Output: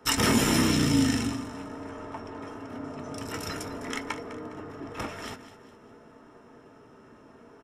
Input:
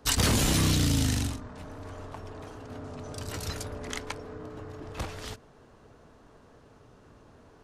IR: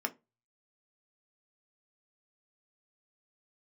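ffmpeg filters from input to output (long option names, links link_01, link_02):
-filter_complex "[0:a]asettb=1/sr,asplit=3[link_01][link_02][link_03];[link_01]atrim=end=0.674[link_04];[link_02]atrim=start=0.67:end=2.5,asetpts=PTS-STARTPTS,afade=type=in:duration=0.004:curve=qsin,afade=type=out:start_time=1.826:duration=0.004:curve=qsin,equalizer=frequency=12000:width_type=o:width=0.27:gain=-9[link_05];[link_03]atrim=start=2.496[link_06];[link_04][link_05]acrossfade=duration=0.004:curve1=hsin:curve2=qsin[link_07];[link_07][link_06]acrossfade=duration=0.004:curve1=qsin:curve2=hsin,aecho=1:1:205|410|615|820:0.2|0.0798|0.0319|0.0128[link_08];[1:a]atrim=start_sample=2205[link_09];[link_08][link_09]afir=irnorm=-1:irlink=0"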